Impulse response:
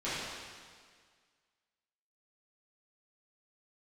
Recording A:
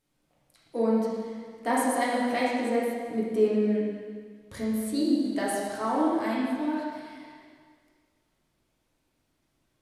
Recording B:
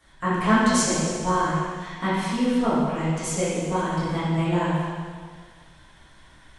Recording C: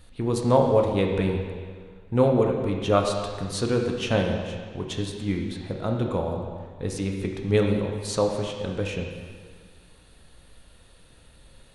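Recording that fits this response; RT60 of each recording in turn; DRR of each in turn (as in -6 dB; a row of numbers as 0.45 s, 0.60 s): B; 1.8 s, 1.8 s, 1.8 s; -7.0 dB, -13.5 dB, 1.5 dB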